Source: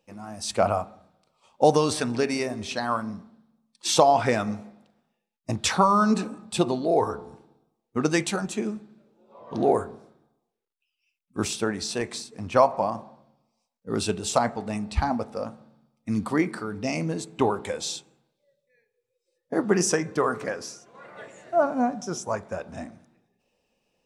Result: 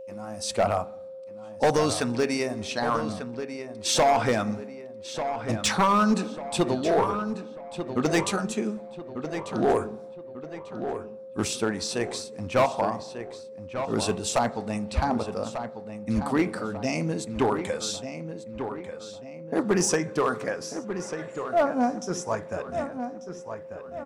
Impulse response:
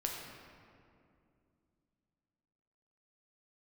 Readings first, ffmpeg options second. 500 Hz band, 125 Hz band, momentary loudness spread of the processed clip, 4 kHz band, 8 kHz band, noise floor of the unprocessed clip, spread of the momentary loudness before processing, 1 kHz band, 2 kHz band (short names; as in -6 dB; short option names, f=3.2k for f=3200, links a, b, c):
-0.5 dB, 0.0 dB, 15 LU, 0.0 dB, 0.0 dB, -81 dBFS, 17 LU, -1.0 dB, +0.5 dB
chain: -filter_complex "[0:a]aeval=exprs='val(0)+0.0126*sin(2*PI*530*n/s)':c=same,volume=16dB,asoftclip=hard,volume=-16dB,asplit=2[a][b];[b]adelay=1193,lowpass=f=3.2k:p=1,volume=-9dB,asplit=2[c][d];[d]adelay=1193,lowpass=f=3.2k:p=1,volume=0.43,asplit=2[e][f];[f]adelay=1193,lowpass=f=3.2k:p=1,volume=0.43,asplit=2[g][h];[h]adelay=1193,lowpass=f=3.2k:p=1,volume=0.43,asplit=2[i][j];[j]adelay=1193,lowpass=f=3.2k:p=1,volume=0.43[k];[a][c][e][g][i][k]amix=inputs=6:normalize=0"